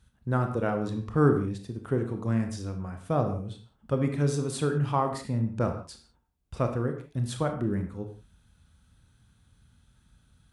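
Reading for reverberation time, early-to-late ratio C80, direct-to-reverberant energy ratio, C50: not exponential, 11.5 dB, 5.0 dB, 8.0 dB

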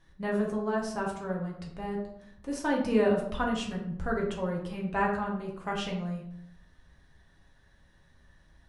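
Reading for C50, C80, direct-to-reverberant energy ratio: 5.5 dB, 8.5 dB, -2.5 dB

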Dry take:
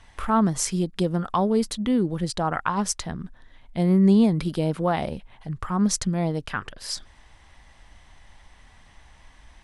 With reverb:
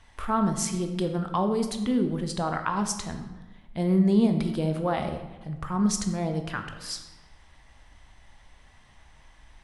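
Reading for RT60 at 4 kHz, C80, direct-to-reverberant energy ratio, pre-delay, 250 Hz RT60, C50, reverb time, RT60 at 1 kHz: 0.75 s, 10.0 dB, 5.5 dB, 13 ms, 1.5 s, 8.0 dB, 1.2 s, 1.1 s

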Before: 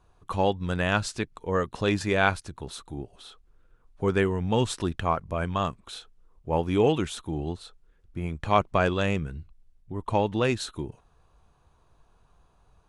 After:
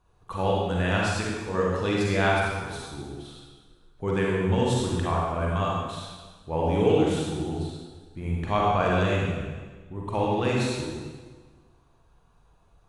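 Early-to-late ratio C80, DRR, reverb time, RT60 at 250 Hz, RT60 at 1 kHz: 0.5 dB, -4.5 dB, 1.5 s, 1.5 s, 1.4 s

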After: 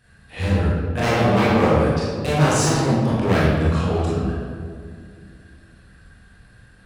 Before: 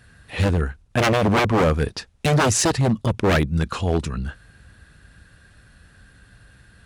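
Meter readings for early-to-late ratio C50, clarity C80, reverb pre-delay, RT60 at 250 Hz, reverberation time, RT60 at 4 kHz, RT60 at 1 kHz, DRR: -2.0 dB, 0.5 dB, 22 ms, 3.1 s, 2.2 s, 1.1 s, 1.9 s, -8.5 dB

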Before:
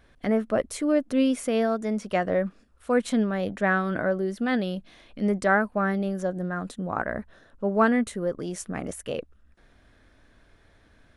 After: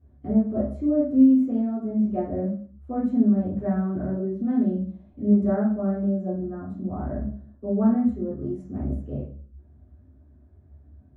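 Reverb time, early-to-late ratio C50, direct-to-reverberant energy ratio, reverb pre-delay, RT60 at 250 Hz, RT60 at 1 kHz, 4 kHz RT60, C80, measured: 0.50 s, 6.0 dB, -10.5 dB, 3 ms, 0.60 s, 0.45 s, 0.45 s, 9.5 dB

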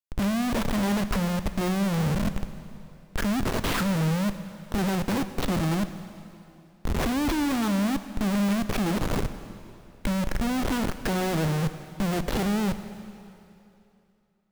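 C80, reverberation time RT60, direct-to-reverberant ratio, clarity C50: 12.0 dB, 2.8 s, 10.5 dB, 11.5 dB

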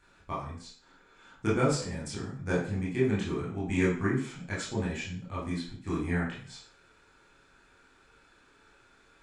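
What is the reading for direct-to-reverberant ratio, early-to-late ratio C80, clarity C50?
-8.0 dB, 9.0 dB, 4.0 dB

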